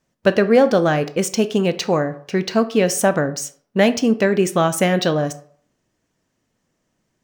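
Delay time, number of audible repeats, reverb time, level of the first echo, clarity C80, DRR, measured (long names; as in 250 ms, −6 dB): no echo audible, no echo audible, 0.55 s, no echo audible, 19.0 dB, 11.0 dB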